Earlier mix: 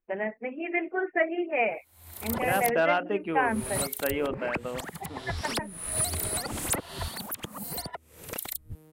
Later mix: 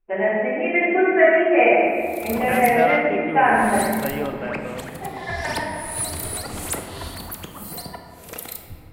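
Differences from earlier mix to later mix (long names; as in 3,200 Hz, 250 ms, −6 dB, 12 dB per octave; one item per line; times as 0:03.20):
second voice: remove linear-phase brick-wall high-pass 160 Hz
reverb: on, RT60 2.2 s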